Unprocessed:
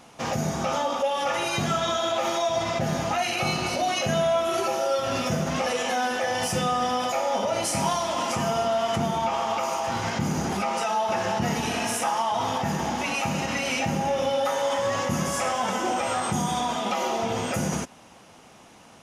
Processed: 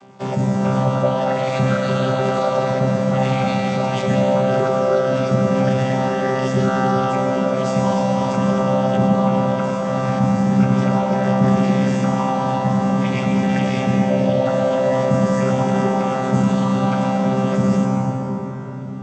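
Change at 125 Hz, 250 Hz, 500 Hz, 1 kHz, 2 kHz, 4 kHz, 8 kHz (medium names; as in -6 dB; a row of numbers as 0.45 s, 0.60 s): +13.5 dB, +13.5 dB, +8.0 dB, +3.5 dB, +2.0 dB, -3.5 dB, -7.0 dB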